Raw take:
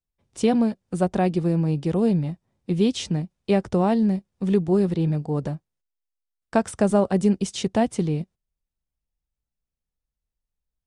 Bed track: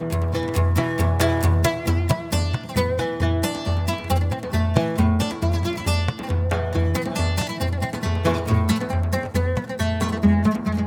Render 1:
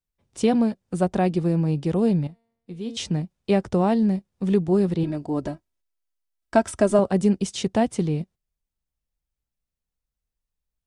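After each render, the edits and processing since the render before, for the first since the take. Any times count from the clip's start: 2.27–2.97 s: feedback comb 230 Hz, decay 0.83 s, mix 80%; 5.03–6.99 s: comb 3.1 ms, depth 68%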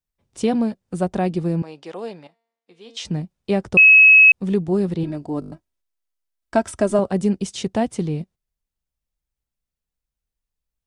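1.62–3.05 s: band-pass 630–6800 Hz; 3.77–4.32 s: bleep 2.57 kHz -6 dBFS; 5.40 s: stutter in place 0.02 s, 6 plays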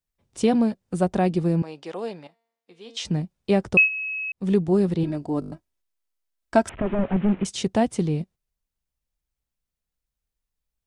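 3.73–4.49 s: dip -20.5 dB, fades 0.16 s; 6.69–7.45 s: one-bit delta coder 16 kbps, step -37 dBFS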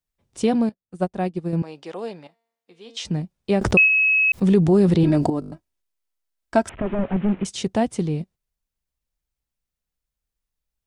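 0.69–1.53 s: upward expansion 2.5:1, over -32 dBFS; 3.61–5.30 s: level flattener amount 70%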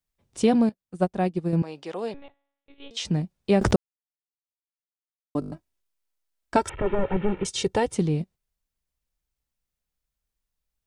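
2.14–2.91 s: monotone LPC vocoder at 8 kHz 280 Hz; 3.76–5.35 s: mute; 6.56–7.95 s: comb 2.2 ms, depth 69%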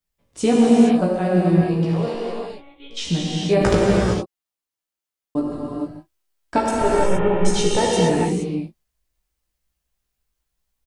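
doubling 17 ms -4 dB; gated-style reverb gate 490 ms flat, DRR -4.5 dB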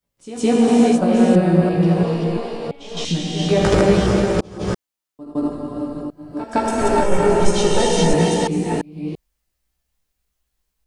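chunks repeated in reverse 339 ms, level -1.5 dB; reverse echo 162 ms -15 dB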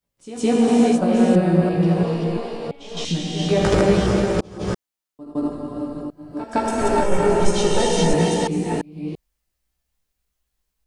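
trim -2 dB

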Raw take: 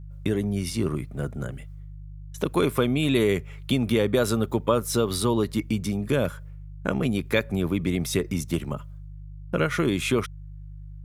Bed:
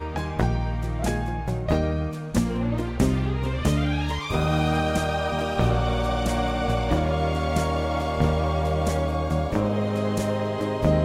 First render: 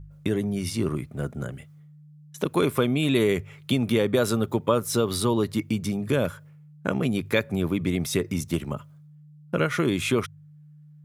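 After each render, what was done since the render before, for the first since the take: de-hum 50 Hz, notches 2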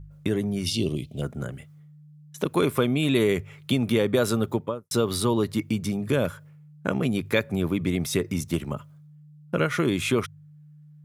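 0.66–1.22 s: FFT filter 650 Hz 0 dB, 1.5 kHz -26 dB, 3 kHz +13 dB, 9.1 kHz 0 dB; 4.47–4.91 s: studio fade out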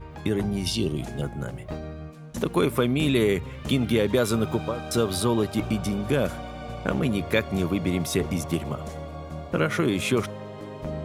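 add bed -12 dB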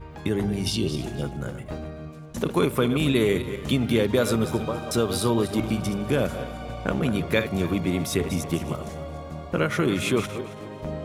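backward echo that repeats 137 ms, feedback 46%, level -10 dB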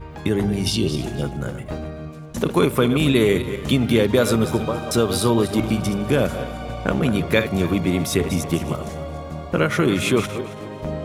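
trim +4.5 dB

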